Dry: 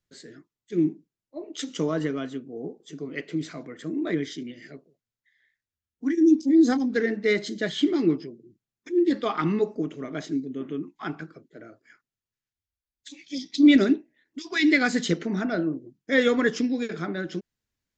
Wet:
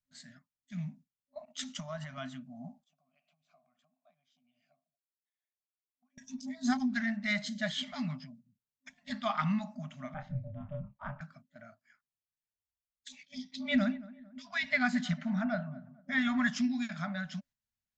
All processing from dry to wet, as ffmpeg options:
-filter_complex "[0:a]asettb=1/sr,asplit=3[s0][s1][s2];[s0]atrim=end=1.454[s3];[s1]atrim=start=1.45:end=2.18,asetpts=PTS-STARTPTS,afade=t=in:d=0.004:c=qsin,afade=t=out:st=0.726:d=0.004:c=qsin,agate=range=0.0224:threshold=0.00891:ratio=3:release=100:detection=peak,acompressor=threshold=0.0447:ratio=10:attack=3.2:release=140:knee=1:detection=peak[s4];[s2]atrim=start=2.176[s5];[s3][s4]acrossfade=d=0.004:c1=hsin:c2=qsin[s6];[s6][s5]acrossfade=d=0.004:c1=qsin:c2=hsin,asettb=1/sr,asplit=3[s7][s8][s9];[s7]atrim=end=2.844[s10];[s8]atrim=start=2.84:end=6.18,asetpts=PTS-STARTPTS,afade=t=in:d=0.004:c=qsin,afade=t=out:st=3.336:d=0.004:c=qsin,bass=f=250:g=11,treble=f=4000:g=11,acompressor=threshold=0.0126:ratio=6:attack=3.2:release=140:knee=1:detection=peak,asplit=3[s11][s12][s13];[s11]bandpass=f=730:t=q:w=8,volume=1[s14];[s12]bandpass=f=1090:t=q:w=8,volume=0.501[s15];[s13]bandpass=f=2440:t=q:w=8,volume=0.355[s16];[s14][s15][s16]amix=inputs=3:normalize=0[s17];[s9]atrim=start=6.176[s18];[s10][s17]acrossfade=d=0.004:c1=hsin:c2=qsin[s19];[s19][s18]acrossfade=d=0.004:c1=qsin:c2=hsin,asettb=1/sr,asplit=3[s20][s21][s22];[s20]atrim=end=10.144[s23];[s21]atrim=start=10.14:end=11.21,asetpts=PTS-STARTPTS,afade=t=in:d=0.004:c=qsin,afade=t=out:st=1.066:d=0.004:c=qsin,lowpass=1400,asplit=2[s24][s25];[s25]adelay=28,volume=0.631[s26];[s24][s26]amix=inputs=2:normalize=0,atrim=end_sample=47187,aeval=exprs='val(0)*sin(2*PI*150*n/s)':c=same[s27];[s22]atrim=start=11.206[s28];[s23][s27]acrossfade=d=0.004:c1=hsin:c2=qsin[s29];[s29][s28]acrossfade=d=0.004:c1=qsin:c2=hsin,asettb=1/sr,asplit=3[s30][s31][s32];[s30]atrim=end=13.234[s33];[s31]atrim=start=13.23:end=16.42,asetpts=PTS-STARTPTS,afade=t=in:d=0.004:c=qsin,afade=t=out:st=3.186:d=0.004:c=qsin,lowpass=f=2100:p=1,asplit=2[s34][s35];[s35]adelay=224,lowpass=f=1300:p=1,volume=0.119,asplit=2[s36][s37];[s37]adelay=224,lowpass=f=1300:p=1,volume=0.45,asplit=2[s38][s39];[s39]adelay=224,lowpass=f=1300:p=1,volume=0.45,asplit=2[s40][s41];[s41]adelay=224,lowpass=f=1300:p=1,volume=0.45[s42];[s34][s36][s38][s40][s42]amix=inputs=5:normalize=0,atrim=end_sample=140679[s43];[s32]atrim=start=16.416[s44];[s33][s43]acrossfade=d=0.004:c1=hsin:c2=qsin[s45];[s45][s44]acrossfade=d=0.004:c1=qsin:c2=hsin,afftfilt=real='re*(1-between(b*sr/4096,260,560))':imag='im*(1-between(b*sr/4096,260,560))':win_size=4096:overlap=0.75,agate=range=0.447:threshold=0.00282:ratio=16:detection=peak,volume=0.631"

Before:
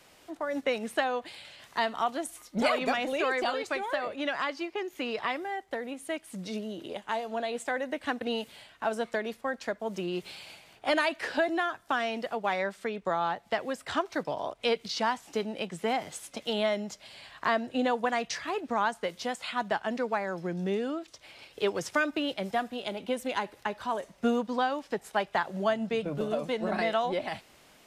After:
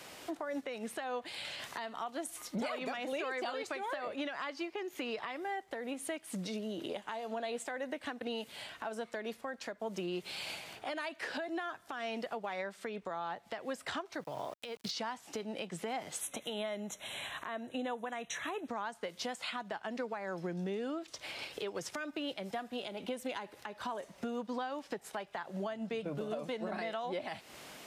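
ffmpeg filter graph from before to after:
-filter_complex "[0:a]asettb=1/sr,asplit=3[s0][s1][s2];[s0]atrim=end=14.204[s3];[s1]atrim=start=14.2:end=14.91,asetpts=PTS-STARTPTS,afade=t=in:d=0.004:c=qsin,afade=t=out:st=0.706:d=0.004:c=qsin,equalizer=f=130:w=5.1:g=12,acompressor=threshold=0.0224:ratio=6:attack=3.2:release=140:knee=1:detection=peak,aeval=exprs='val(0)*gte(abs(val(0)),0.00335)':c=same[s4];[s2]atrim=start=14.906[s5];[s3][s4]acrossfade=d=0.004:c1=hsin:c2=qsin[s6];[s6][s5]acrossfade=d=0.004:c1=qsin:c2=hsin,asettb=1/sr,asplit=3[s7][s8][s9];[s7]atrim=end=16.214[s10];[s8]atrim=start=16.21:end=18.68,asetpts=PTS-STARTPTS,afade=t=in:d=0.004:c=qsin,afade=t=out:st=2.466:d=0.004:c=qsin,asuperstop=centerf=4800:order=20:qfactor=3.1,equalizer=f=11000:t=o:w=0.43:g=9[s11];[s9]atrim=start=18.676[s12];[s10][s11]acrossfade=d=0.004:c1=hsin:c2=qsin[s13];[s13][s12]acrossfade=d=0.004:c1=qsin:c2=hsin,acompressor=threshold=0.00631:ratio=4,highpass=f=110:p=1,alimiter=level_in=3.76:limit=0.0631:level=0:latency=1:release=142,volume=0.266,volume=2.37"

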